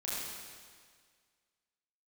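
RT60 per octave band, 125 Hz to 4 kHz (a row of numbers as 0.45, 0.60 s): 1.8, 1.8, 1.8, 1.8, 1.8, 1.8 s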